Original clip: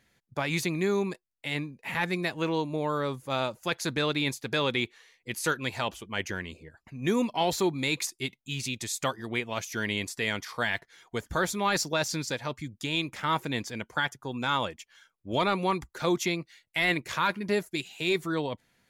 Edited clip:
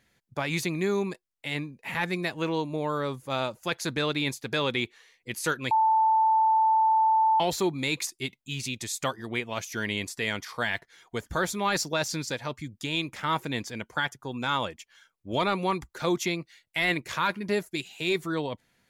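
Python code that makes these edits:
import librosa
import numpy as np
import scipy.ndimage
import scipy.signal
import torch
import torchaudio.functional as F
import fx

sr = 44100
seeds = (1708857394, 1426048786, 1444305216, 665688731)

y = fx.edit(x, sr, fx.bleep(start_s=5.71, length_s=1.69, hz=883.0, db=-18.5), tone=tone)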